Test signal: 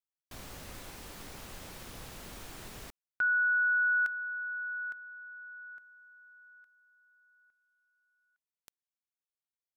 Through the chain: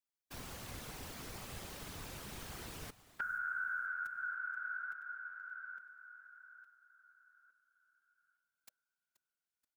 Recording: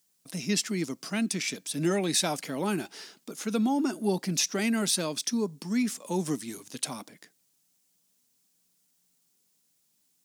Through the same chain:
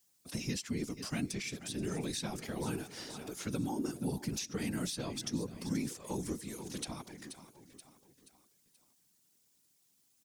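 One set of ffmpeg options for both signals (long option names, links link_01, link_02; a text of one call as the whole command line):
ffmpeg -i in.wav -filter_complex "[0:a]bandreject=frequency=590:width=17,aecho=1:1:479|958|1437|1916:0.141|0.0636|0.0286|0.0129,acrossover=split=220|6400[link_01][link_02][link_03];[link_01]acompressor=threshold=-38dB:ratio=4[link_04];[link_02]acompressor=threshold=-40dB:ratio=4[link_05];[link_03]acompressor=threshold=-47dB:ratio=4[link_06];[link_04][link_05][link_06]amix=inputs=3:normalize=0,afftfilt=real='hypot(re,im)*cos(2*PI*random(0))':imag='hypot(re,im)*sin(2*PI*random(1))':win_size=512:overlap=0.75,volume=5dB" out.wav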